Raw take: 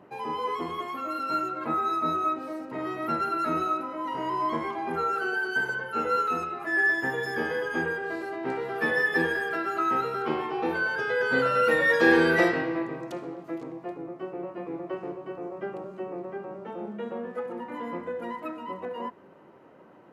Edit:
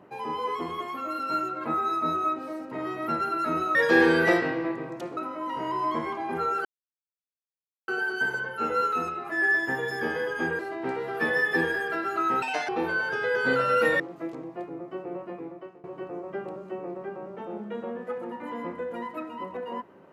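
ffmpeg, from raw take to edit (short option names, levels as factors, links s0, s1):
-filter_complex "[0:a]asplit=9[s0][s1][s2][s3][s4][s5][s6][s7][s8];[s0]atrim=end=3.752[s9];[s1]atrim=start=11.858:end=13.282[s10];[s2]atrim=start=3.748:end=5.23,asetpts=PTS-STARTPTS,afade=t=out:st=1.478:d=0.004:c=hsin,apad=pad_dur=1.23[s11];[s3]atrim=start=5.23:end=7.942,asetpts=PTS-STARTPTS,afade=t=in:d=0.004:c=hsin[s12];[s4]atrim=start=8.198:end=10.034[s13];[s5]atrim=start=10.03:end=10.55,asetpts=PTS-STARTPTS,asetrate=85554,aresample=44100[s14];[s6]atrim=start=10.546:end=11.862[s15];[s7]atrim=start=13.278:end=15.12,asetpts=PTS-STARTPTS,afade=t=out:st=1.232:d=0.61:silence=0.0668344[s16];[s8]atrim=start=15.12,asetpts=PTS-STARTPTS,afade=t=in:d=0.004:c=hsin:silence=0.0668344[s17];[s9][s10]acrossfade=d=0.004:c1=hsin:c2=hsin[s18];[s11][s12]concat=n=2:v=0:a=1[s19];[s18][s19]acrossfade=d=0.004:c1=hsin:c2=hsin[s20];[s20][s13]acrossfade=d=0.004:c1=hsin:c2=hsin[s21];[s21][s14]acrossfade=d=0.004:c1=hsin:c2=hsin[s22];[s22][s15]acrossfade=d=0.004:c1=hsin:c2=hsin[s23];[s16][s17]concat=n=2:v=0:a=1[s24];[s23][s24]acrossfade=d=0.004:c1=hsin:c2=hsin"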